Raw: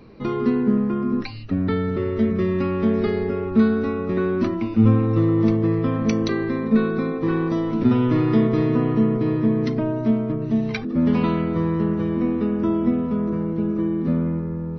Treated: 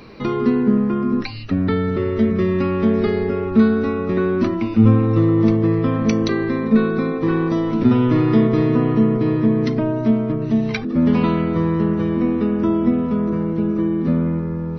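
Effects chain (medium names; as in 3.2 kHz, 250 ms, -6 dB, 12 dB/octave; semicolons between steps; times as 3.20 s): tape noise reduction on one side only encoder only; trim +3 dB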